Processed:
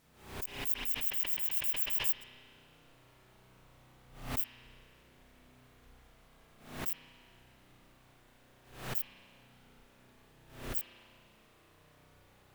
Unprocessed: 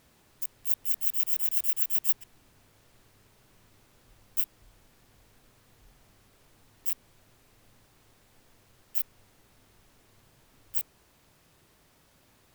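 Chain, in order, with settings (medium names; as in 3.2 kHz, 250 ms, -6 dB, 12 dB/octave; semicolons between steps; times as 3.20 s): spring tank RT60 2.2 s, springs 32 ms, chirp 30 ms, DRR -6.5 dB; swell ahead of each attack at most 97 dB/s; trim -6.5 dB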